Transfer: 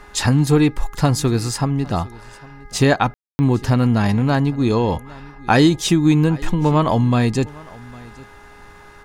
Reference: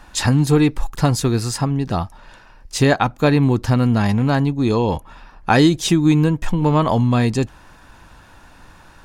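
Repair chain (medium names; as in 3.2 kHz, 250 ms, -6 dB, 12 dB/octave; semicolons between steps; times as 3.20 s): de-hum 411.7 Hz, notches 5; room tone fill 3.14–3.39 s; inverse comb 806 ms -22.5 dB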